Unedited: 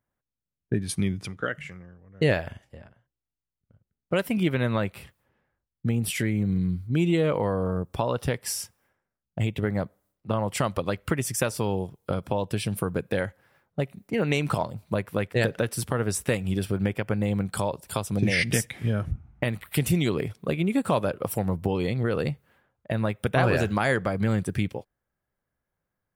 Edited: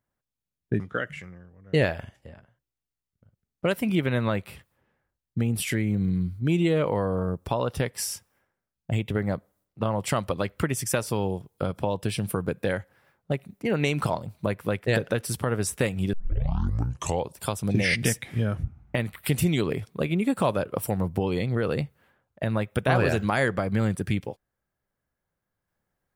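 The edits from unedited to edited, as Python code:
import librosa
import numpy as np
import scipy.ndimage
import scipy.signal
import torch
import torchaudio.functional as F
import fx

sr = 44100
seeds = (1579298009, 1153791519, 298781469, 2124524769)

y = fx.edit(x, sr, fx.cut(start_s=0.8, length_s=0.48),
    fx.tape_start(start_s=16.61, length_s=1.19), tone=tone)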